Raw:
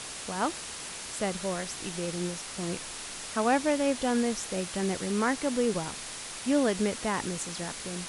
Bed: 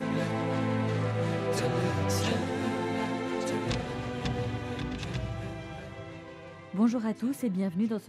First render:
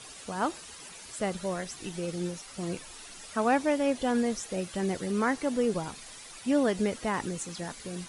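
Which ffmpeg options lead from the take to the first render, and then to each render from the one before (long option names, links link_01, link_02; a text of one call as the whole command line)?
ffmpeg -i in.wav -af "afftdn=noise_reduction=11:noise_floor=-40" out.wav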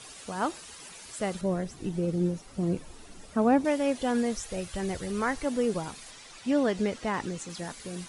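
ffmpeg -i in.wav -filter_complex "[0:a]asettb=1/sr,asplit=3[link_01][link_02][link_03];[link_01]atrim=end=1.414[link_04];[link_02]atrim=start=1.41:end=3.65,asetpts=PTS-STARTPTS,afade=type=in:duration=0.004:curve=qsin,afade=type=out:start_time=2.236:duration=0.004:curve=qsin,tiltshelf=frequency=720:gain=8.5[link_05];[link_03]atrim=start=3.646[link_06];[link_04][link_05]acrossfade=duration=0.004:curve1=hsin:curve2=qsin[link_07];[link_07][link_06]acrossfade=duration=0.004:curve1=qsin:curve2=hsin,asplit=3[link_08][link_09][link_10];[link_08]afade=type=out:start_time=4.37:duration=0.02[link_11];[link_09]asubboost=boost=7:cutoff=84,afade=type=in:start_time=4.37:duration=0.02,afade=type=out:start_time=5.44:duration=0.02[link_12];[link_10]afade=type=in:start_time=5.44:duration=0.02[link_13];[link_11][link_12][link_13]amix=inputs=3:normalize=0,asettb=1/sr,asplit=3[link_14][link_15][link_16];[link_14]atrim=end=6.114[link_17];[link_15]atrim=start=6.11:end=7.5,asetpts=PTS-STARTPTS,afade=type=in:duration=0.004:curve=qsin,afade=type=out:start_time=1.386:duration=0.004:curve=qsin,lowpass=7000[link_18];[link_16]atrim=start=7.496[link_19];[link_17][link_18]acrossfade=duration=0.004:curve1=hsin:curve2=qsin[link_20];[link_20][link_19]acrossfade=duration=0.004:curve1=qsin:curve2=hsin" out.wav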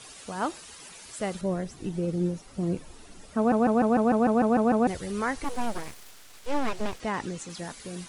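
ffmpeg -i in.wav -filter_complex "[0:a]asettb=1/sr,asplit=3[link_01][link_02][link_03];[link_01]atrim=end=5.444[link_04];[link_02]atrim=start=5.44:end=7,asetpts=PTS-STARTPTS,afade=type=in:duration=0.004:curve=qsin,afade=type=out:start_time=1.556:duration=0.004:curve=qsin,aeval=exprs='abs(val(0))':channel_layout=same[link_05];[link_03]atrim=start=6.996[link_06];[link_04][link_05]acrossfade=duration=0.004:curve1=hsin:curve2=qsin[link_07];[link_07][link_06]acrossfade=duration=0.004:curve1=qsin:curve2=hsin,asplit=11[link_08][link_09][link_10][link_11][link_12][link_13][link_14][link_15][link_16][link_17][link_18];[link_08]atrim=end=3.522[link_19];[link_09]atrim=start=3.368:end=3.522[link_20];[link_10]atrim=start=3.368:end=3.522[link_21];[link_11]atrim=start=3.368:end=3.522[link_22];[link_12]atrim=start=3.368:end=3.522[link_23];[link_13]atrim=start=3.368:end=3.522[link_24];[link_14]atrim=start=3.368:end=3.522[link_25];[link_15]atrim=start=3.368:end=3.522[link_26];[link_16]atrim=start=3.368:end=3.522[link_27];[link_17]atrim=start=3.368:end=3.522[link_28];[link_18]atrim=start=4.868[link_29];[link_19][link_20]acrossfade=duration=0.004:curve1=hsin:curve2=hsin[link_30];[link_30][link_21]acrossfade=duration=0.004:curve1=hsin:curve2=hsin[link_31];[link_31][link_22]acrossfade=duration=0.004:curve1=hsin:curve2=hsin[link_32];[link_32][link_23]acrossfade=duration=0.004:curve1=hsin:curve2=hsin[link_33];[link_33][link_24]acrossfade=duration=0.004:curve1=hsin:curve2=hsin[link_34];[link_34][link_25]acrossfade=duration=0.004:curve1=hsin:curve2=hsin[link_35];[link_35][link_26]acrossfade=duration=0.004:curve1=hsin:curve2=hsin[link_36];[link_36][link_27]acrossfade=duration=0.004:curve1=hsin:curve2=hsin[link_37];[link_37][link_28]acrossfade=duration=0.004:curve1=hsin:curve2=hsin[link_38];[link_38][link_29]acrossfade=duration=0.004:curve1=hsin:curve2=hsin" out.wav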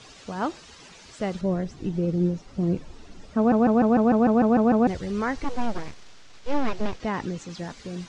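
ffmpeg -i in.wav -af "lowpass=frequency=6400:width=0.5412,lowpass=frequency=6400:width=1.3066,lowshelf=frequency=400:gain=5.5" out.wav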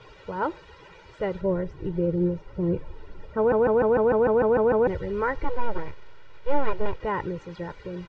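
ffmpeg -i in.wav -af "lowpass=2100,aecho=1:1:2.1:0.79" out.wav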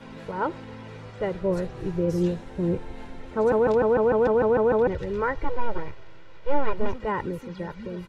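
ffmpeg -i in.wav -i bed.wav -filter_complex "[1:a]volume=-12.5dB[link_01];[0:a][link_01]amix=inputs=2:normalize=0" out.wav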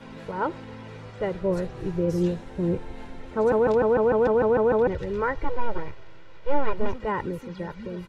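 ffmpeg -i in.wav -af anull out.wav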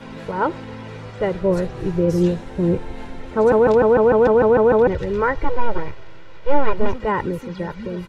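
ffmpeg -i in.wav -af "volume=6.5dB" out.wav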